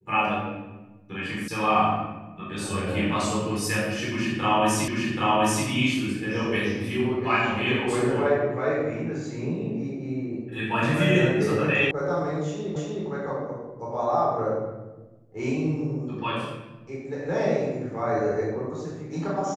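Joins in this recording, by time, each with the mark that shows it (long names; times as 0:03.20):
0:01.48: cut off before it has died away
0:04.88: the same again, the last 0.78 s
0:11.91: cut off before it has died away
0:12.76: the same again, the last 0.31 s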